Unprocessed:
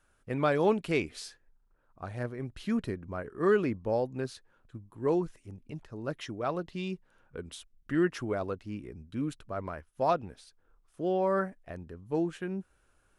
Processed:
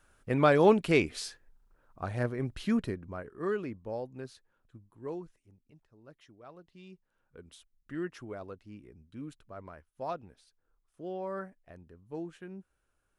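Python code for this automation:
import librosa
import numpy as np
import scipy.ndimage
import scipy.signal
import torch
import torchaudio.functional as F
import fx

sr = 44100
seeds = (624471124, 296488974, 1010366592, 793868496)

y = fx.gain(x, sr, db=fx.line((2.54, 4.0), (3.57, -8.0), (4.84, -8.0), (5.8, -19.0), (6.55, -19.0), (7.49, -9.5)))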